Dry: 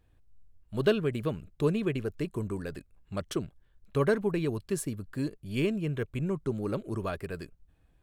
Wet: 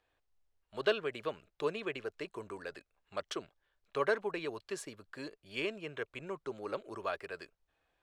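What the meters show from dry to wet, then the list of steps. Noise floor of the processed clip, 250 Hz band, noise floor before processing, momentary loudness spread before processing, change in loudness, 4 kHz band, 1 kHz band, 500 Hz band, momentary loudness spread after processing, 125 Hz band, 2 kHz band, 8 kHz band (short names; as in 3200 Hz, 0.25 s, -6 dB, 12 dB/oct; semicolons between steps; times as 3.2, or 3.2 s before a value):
-82 dBFS, -14.0 dB, -66 dBFS, 12 LU, -7.0 dB, -0.5 dB, -0.5 dB, -6.0 dB, 14 LU, -21.0 dB, 0.0 dB, -8.0 dB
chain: three-band isolator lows -22 dB, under 450 Hz, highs -18 dB, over 6800 Hz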